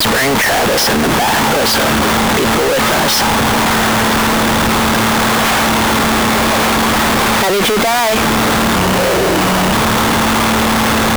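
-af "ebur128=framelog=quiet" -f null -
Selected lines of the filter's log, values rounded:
Integrated loudness:
  I:         -11.7 LUFS
  Threshold: -21.7 LUFS
Loudness range:
  LRA:         0.4 LU
  Threshold: -31.7 LUFS
  LRA low:   -12.0 LUFS
  LRA high:  -11.5 LUFS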